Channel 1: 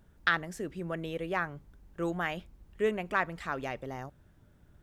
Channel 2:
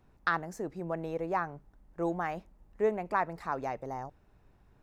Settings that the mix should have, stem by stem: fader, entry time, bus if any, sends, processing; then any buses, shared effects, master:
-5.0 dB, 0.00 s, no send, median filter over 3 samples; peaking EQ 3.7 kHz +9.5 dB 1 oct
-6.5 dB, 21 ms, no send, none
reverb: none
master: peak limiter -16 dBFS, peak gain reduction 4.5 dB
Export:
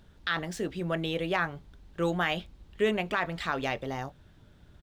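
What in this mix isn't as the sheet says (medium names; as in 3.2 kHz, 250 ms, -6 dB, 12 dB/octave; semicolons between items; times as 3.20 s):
stem 1 -5.0 dB -> +4.0 dB; stem 2: polarity flipped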